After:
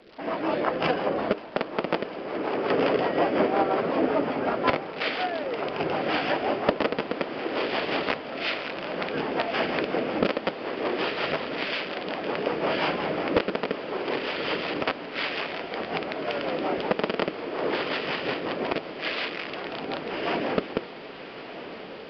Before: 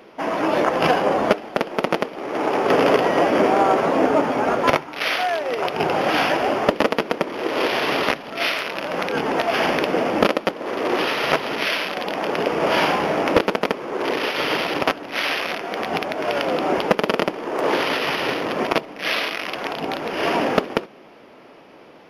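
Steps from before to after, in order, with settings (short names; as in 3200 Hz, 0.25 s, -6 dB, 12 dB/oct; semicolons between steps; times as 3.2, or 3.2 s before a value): crackle 230/s -29 dBFS; downsampling 11025 Hz; rotary speaker horn 5.5 Hz; on a send: diffused feedback echo 1.222 s, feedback 75%, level -13.5 dB; on the sum: gain -4.5 dB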